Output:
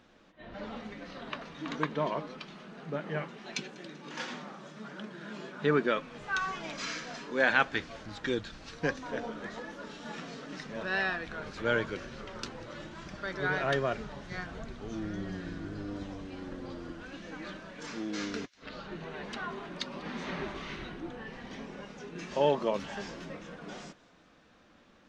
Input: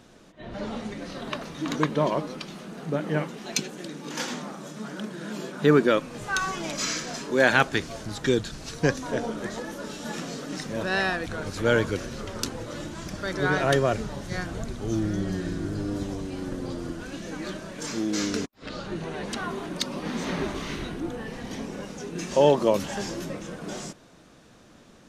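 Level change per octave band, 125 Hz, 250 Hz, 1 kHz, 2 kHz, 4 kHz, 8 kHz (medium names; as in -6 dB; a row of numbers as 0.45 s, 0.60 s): -10.5 dB, -9.5 dB, -5.5 dB, -4.0 dB, -7.5 dB, -14.5 dB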